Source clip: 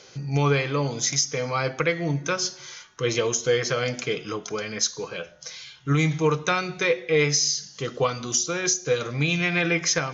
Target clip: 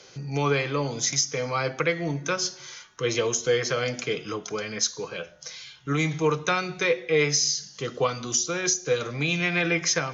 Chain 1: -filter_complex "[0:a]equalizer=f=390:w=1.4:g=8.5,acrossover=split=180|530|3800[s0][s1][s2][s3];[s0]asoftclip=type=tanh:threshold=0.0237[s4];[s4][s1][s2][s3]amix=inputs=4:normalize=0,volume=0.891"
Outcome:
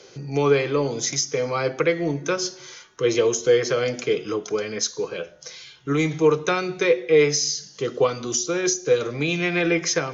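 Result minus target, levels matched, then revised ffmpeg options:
500 Hz band +3.0 dB
-filter_complex "[0:a]acrossover=split=180|530|3800[s0][s1][s2][s3];[s0]asoftclip=type=tanh:threshold=0.0237[s4];[s4][s1][s2][s3]amix=inputs=4:normalize=0,volume=0.891"

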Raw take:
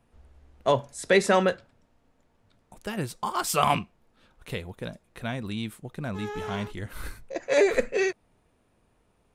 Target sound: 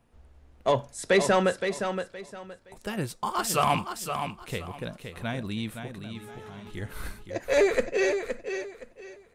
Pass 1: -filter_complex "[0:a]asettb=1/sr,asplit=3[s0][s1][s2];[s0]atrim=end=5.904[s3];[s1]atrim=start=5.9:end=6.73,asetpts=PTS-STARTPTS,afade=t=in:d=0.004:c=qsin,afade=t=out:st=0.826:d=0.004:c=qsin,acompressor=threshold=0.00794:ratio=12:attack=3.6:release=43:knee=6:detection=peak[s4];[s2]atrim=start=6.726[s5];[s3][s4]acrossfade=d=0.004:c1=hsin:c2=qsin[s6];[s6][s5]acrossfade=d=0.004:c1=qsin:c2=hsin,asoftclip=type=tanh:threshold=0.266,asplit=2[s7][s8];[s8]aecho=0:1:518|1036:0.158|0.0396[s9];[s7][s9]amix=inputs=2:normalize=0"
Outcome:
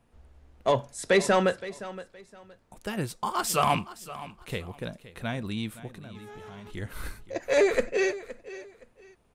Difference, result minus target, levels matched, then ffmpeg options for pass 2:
echo-to-direct -8.5 dB
-filter_complex "[0:a]asettb=1/sr,asplit=3[s0][s1][s2];[s0]atrim=end=5.904[s3];[s1]atrim=start=5.9:end=6.73,asetpts=PTS-STARTPTS,afade=t=in:d=0.004:c=qsin,afade=t=out:st=0.826:d=0.004:c=qsin,acompressor=threshold=0.00794:ratio=12:attack=3.6:release=43:knee=6:detection=peak[s4];[s2]atrim=start=6.726[s5];[s3][s4]acrossfade=d=0.004:c1=hsin:c2=qsin[s6];[s6][s5]acrossfade=d=0.004:c1=qsin:c2=hsin,asoftclip=type=tanh:threshold=0.266,asplit=2[s7][s8];[s8]aecho=0:1:518|1036|1554:0.422|0.105|0.0264[s9];[s7][s9]amix=inputs=2:normalize=0"

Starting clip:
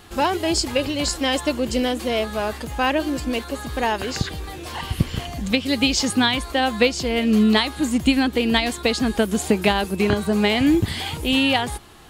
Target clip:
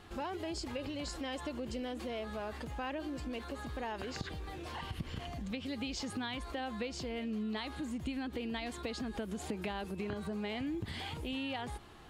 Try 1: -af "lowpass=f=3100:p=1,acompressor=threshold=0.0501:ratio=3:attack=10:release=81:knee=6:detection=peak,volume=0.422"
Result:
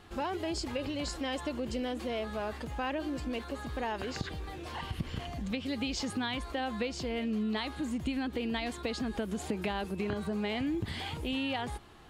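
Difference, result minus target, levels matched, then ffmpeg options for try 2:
compression: peak gain reduction -5 dB
-af "lowpass=f=3100:p=1,acompressor=threshold=0.0211:ratio=3:attack=10:release=81:knee=6:detection=peak,volume=0.422"

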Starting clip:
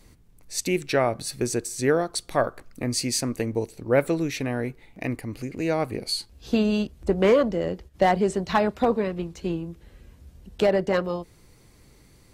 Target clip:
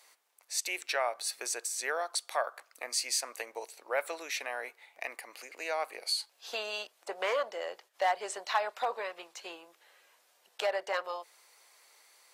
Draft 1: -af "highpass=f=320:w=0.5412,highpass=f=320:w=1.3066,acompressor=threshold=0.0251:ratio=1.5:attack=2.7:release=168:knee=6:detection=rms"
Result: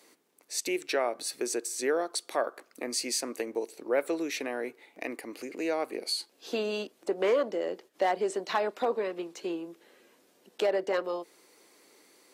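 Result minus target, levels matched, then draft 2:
250 Hz band +17.0 dB
-af "highpass=f=670:w=0.5412,highpass=f=670:w=1.3066,acompressor=threshold=0.0251:ratio=1.5:attack=2.7:release=168:knee=6:detection=rms"

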